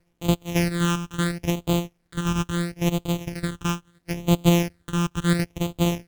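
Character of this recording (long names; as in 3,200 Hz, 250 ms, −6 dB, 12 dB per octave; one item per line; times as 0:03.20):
a buzz of ramps at a fixed pitch in blocks of 256 samples
phaser sweep stages 8, 0.74 Hz, lowest notch 590–1,700 Hz
a quantiser's noise floor 12 bits, dither none
Ogg Vorbis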